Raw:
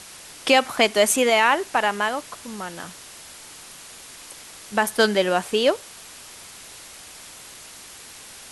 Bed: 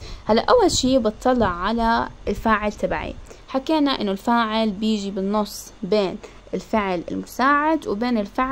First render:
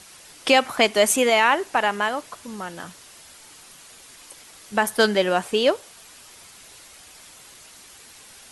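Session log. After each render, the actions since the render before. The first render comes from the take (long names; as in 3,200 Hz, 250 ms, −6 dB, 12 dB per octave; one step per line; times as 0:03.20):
broadband denoise 6 dB, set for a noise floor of −43 dBFS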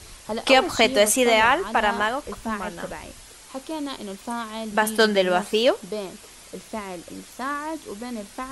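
mix in bed −11.5 dB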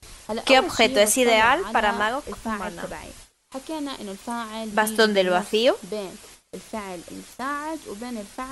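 noise gate with hold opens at −33 dBFS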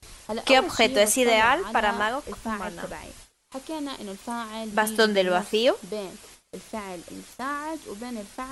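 level −2 dB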